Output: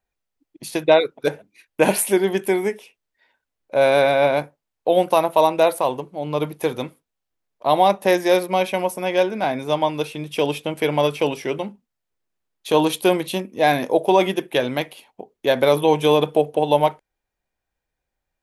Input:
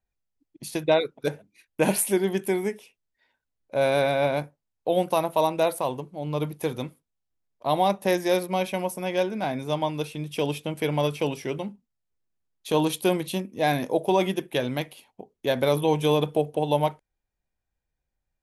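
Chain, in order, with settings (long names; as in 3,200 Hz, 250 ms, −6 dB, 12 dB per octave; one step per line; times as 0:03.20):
bass and treble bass −8 dB, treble −4 dB
level +7 dB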